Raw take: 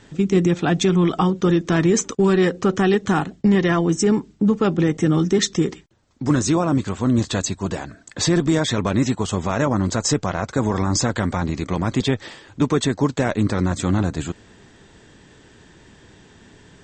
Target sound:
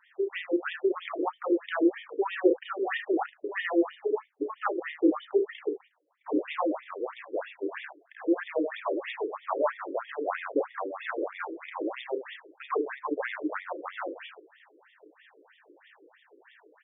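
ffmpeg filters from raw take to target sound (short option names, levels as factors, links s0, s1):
-filter_complex "[0:a]acrossover=split=650[s0][s1];[s0]aeval=exprs='val(0)*(1-0.5/2+0.5/2*cos(2*PI*1.6*n/s))':c=same[s2];[s1]aeval=exprs='val(0)*(1-0.5/2-0.5/2*cos(2*PI*1.6*n/s))':c=same[s3];[s2][s3]amix=inputs=2:normalize=0,aecho=1:1:33|76:0.596|0.355,afftfilt=real='re*between(b*sr/1024,380*pow(2600/380,0.5+0.5*sin(2*PI*3.1*pts/sr))/1.41,380*pow(2600/380,0.5+0.5*sin(2*PI*3.1*pts/sr))*1.41)':imag='im*between(b*sr/1024,380*pow(2600/380,0.5+0.5*sin(2*PI*3.1*pts/sr))/1.41,380*pow(2600/380,0.5+0.5*sin(2*PI*3.1*pts/sr))*1.41)':win_size=1024:overlap=0.75"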